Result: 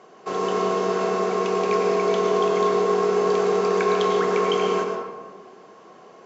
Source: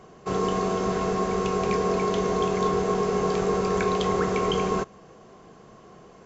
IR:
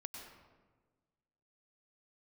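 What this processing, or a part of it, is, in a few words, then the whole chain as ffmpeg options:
supermarket ceiling speaker: -filter_complex "[0:a]highpass=330,lowpass=6.6k[a];[1:a]atrim=start_sample=2205[b];[a][b]afir=irnorm=-1:irlink=0,volume=7dB"

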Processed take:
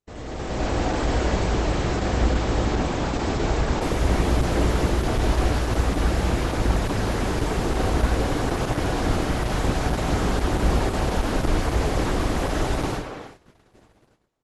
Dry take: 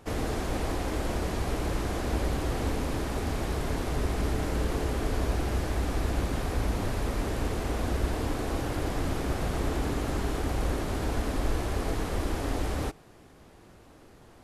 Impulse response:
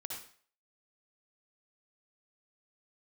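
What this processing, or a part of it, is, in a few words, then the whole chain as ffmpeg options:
speakerphone in a meeting room: -filter_complex "[0:a]asettb=1/sr,asplit=3[a][b][c];[a]atrim=end=9.244[d];[b]atrim=start=9.24:end=10.13,asetpts=PTS-STARTPTS,afade=t=in:d=0.004:c=qsin,afade=t=out:st=0.886:d=0.004:c=qsin,adynamicequalizer=threshold=0.00398:dfrequency=350:dqfactor=1.7:tfrequency=350:tqfactor=1.7:attack=5:release=100:ratio=0.375:range=2:mode=cutabove:tftype=bell[e];[c]atrim=start=10.126[f];[d][e]acrossfade=d=0.004:c1=hsin:c2=qsin[g];[g][f]acrossfade=d=0.004:c1=qsin:c2=hsin[h];[1:a]atrim=start_sample=2205[i];[h][i]afir=irnorm=-1:irlink=0,asplit=2[j][k];[k]adelay=280,highpass=300,lowpass=3.4k,asoftclip=type=hard:threshold=-25.5dB,volume=-7dB[l];[j][l]amix=inputs=2:normalize=0,dynaudnorm=f=120:g=9:m=12dB,agate=range=-29dB:threshold=-40dB:ratio=16:detection=peak,volume=-2.5dB" -ar 48000 -c:a libopus -b:a 12k

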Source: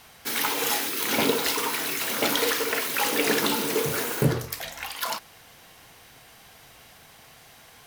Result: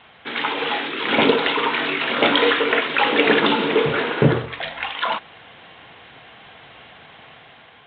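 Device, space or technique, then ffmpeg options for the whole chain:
Bluetooth headset: -filter_complex "[0:a]asettb=1/sr,asplit=3[a][b][c];[a]atrim=end=1.734[d];[b]atrim=start=1.73:end=2.81,asetpts=PTS-STARTPTS,afade=t=in:d=0.004:c=qsin,afade=t=out:st=1.076:d=0.004:c=qsin,asplit=2[e][f];[f]adelay=21,volume=-8dB[g];[e][g]amix=inputs=2:normalize=0,atrim=end_sample=47628[h];[c]atrim=start=2.806[i];[d][h]acrossfade=d=0.004:c1=hsin:c2=qsin[j];[j][i]acrossfade=d=0.004:c1=qsin:c2=hsin,highpass=f=150:p=1,dynaudnorm=f=610:g=3:m=4.5dB,aresample=8000,aresample=44100,volume=4.5dB" -ar 16000 -c:a sbc -b:a 64k

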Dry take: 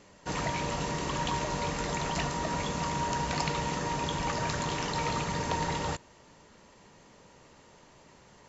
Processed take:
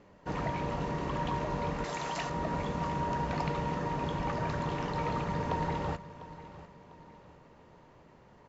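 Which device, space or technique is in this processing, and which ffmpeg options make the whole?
through cloth: -filter_complex "[0:a]asettb=1/sr,asplit=3[a][b][c];[a]atrim=end=1.844[d];[b]atrim=start=1.84:end=2.3,asetpts=PTS-STARTPTS,afade=t=in:d=0.004:c=qsin,afade=t=out:st=0.456:d=0.004:c=qsin,aemphasis=mode=production:type=riaa[e];[c]atrim=start=2.296[f];[d][e]acrossfade=d=0.004:c1=hsin:c2=qsin[g];[g][f]acrossfade=d=0.004:c1=qsin:c2=hsin,lowpass=6.1k,highshelf=f=2.7k:g=-16,aecho=1:1:699|1398|2097|2796:0.158|0.065|0.0266|0.0109"

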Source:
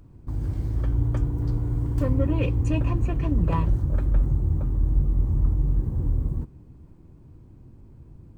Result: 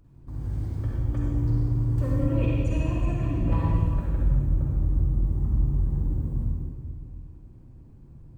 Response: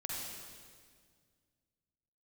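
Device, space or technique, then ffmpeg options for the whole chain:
stairwell: -filter_complex "[1:a]atrim=start_sample=2205[a];[0:a][a]afir=irnorm=-1:irlink=0,volume=-3.5dB"

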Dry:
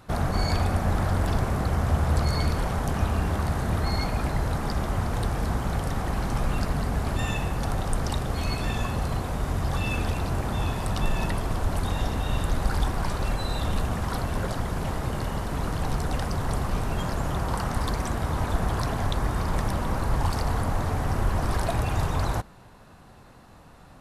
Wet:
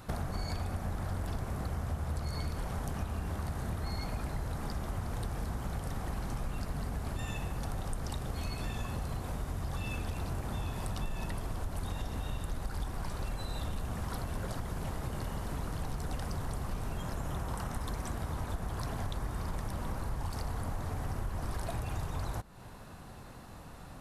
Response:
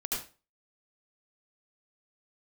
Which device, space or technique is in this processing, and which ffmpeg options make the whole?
ASMR close-microphone chain: -filter_complex "[0:a]lowshelf=f=190:g=3,acompressor=threshold=-35dB:ratio=4,highshelf=f=7.6k:g=6.5,asettb=1/sr,asplit=3[a][b][c];[a]atrim=end=16.974[d];[b]atrim=start=16.97:end=18,asetpts=PTS-STARTPTS,afade=t=in:d=0.004:c=qsin,afade=t=out:st=1.026:d=0.004:c=qsin,bandreject=f=4.6k:w=11[e];[c]atrim=start=17.996[f];[d][e]acrossfade=d=0.004:c1=hsin:c2=qsin[g];[g][f]acrossfade=d=0.004:c1=qsin:c2=hsin"

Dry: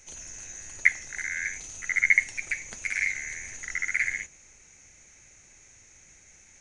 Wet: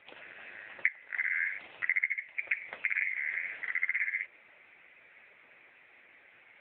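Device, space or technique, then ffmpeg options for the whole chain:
voicemail: -filter_complex "[0:a]highshelf=f=7.7k:g=-4.5,asettb=1/sr,asplit=3[a][b][c];[a]atrim=end=1.034[d];[b]atrim=start=1.03:end=1.86,asetpts=PTS-STARTPTS,afade=t=in:d=0.004:c=qsin,afade=t=out:st=0.826:d=0.004:c=qsin,asplit=2[e][f];[f]adelay=31,volume=-12dB[g];[e][g]amix=inputs=2:normalize=0,atrim=end_sample=36603[h];[c]atrim=start=1.856[i];[d][h]acrossfade=d=0.004:c1=hsin:c2=qsin[j];[j][i]acrossfade=d=0.004:c1=qsin:c2=hsin,highpass=410,lowpass=3.1k,acompressor=threshold=-34dB:ratio=10,volume=9dB" -ar 8000 -c:a libopencore_amrnb -b:a 6700

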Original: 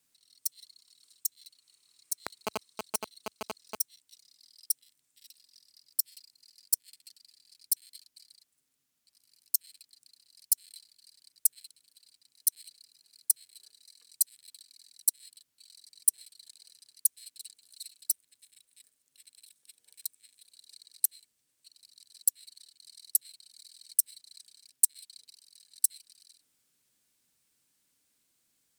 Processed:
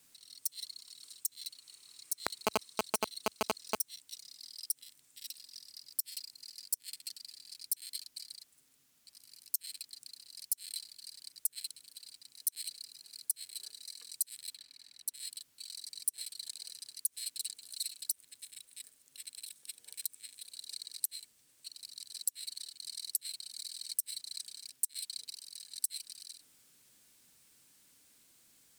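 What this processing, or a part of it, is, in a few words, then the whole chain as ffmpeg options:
de-esser from a sidechain: -filter_complex "[0:a]asettb=1/sr,asplit=3[a][b][c];[a]atrim=end=14.544[d];[b]atrim=start=14.54:end=15.14,asetpts=PTS-STARTPTS,afade=t=in:d=0.004:c=qsin,afade=t=out:st=0.596:d=0.004:c=qsin,bass=f=250:g=1,treble=f=4k:g=-14[e];[c]atrim=start=15.136[f];[d][e]acrossfade=d=0.004:c1=hsin:c2=qsin[g];[g][f]acrossfade=d=0.004:c1=qsin:c2=hsin,asplit=2[h][i];[i]highpass=5.2k,apad=whole_len=1269356[j];[h][j]sidechaincompress=threshold=-42dB:ratio=3:attack=2.2:release=54,volume=9.5dB"

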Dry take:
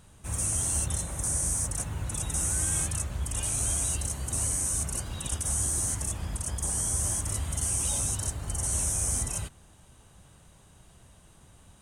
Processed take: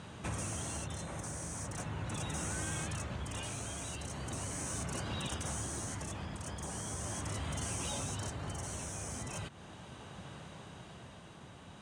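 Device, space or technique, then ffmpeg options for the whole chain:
AM radio: -af "highpass=130,lowpass=4.2k,acompressor=threshold=-46dB:ratio=5,asoftclip=type=tanh:threshold=-38dB,tremolo=f=0.39:d=0.36,volume=11dB"

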